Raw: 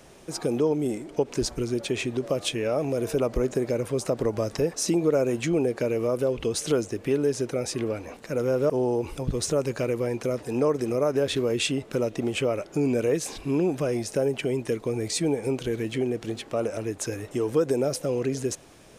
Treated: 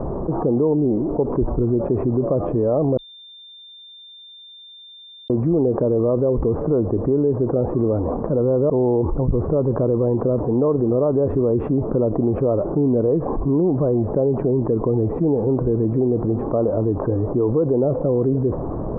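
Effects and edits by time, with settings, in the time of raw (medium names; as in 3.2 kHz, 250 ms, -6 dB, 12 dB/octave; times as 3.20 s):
2.97–5.30 s: bleep 3.59 kHz -16 dBFS
whole clip: elliptic low-pass 1.1 kHz, stop band 80 dB; tilt EQ -2 dB/octave; level flattener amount 70%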